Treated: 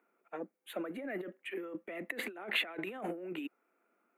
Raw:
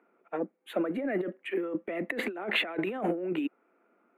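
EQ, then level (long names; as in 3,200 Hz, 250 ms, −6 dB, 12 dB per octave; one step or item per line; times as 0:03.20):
first-order pre-emphasis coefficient 0.9
high-shelf EQ 2,600 Hz −9.5 dB
+9.5 dB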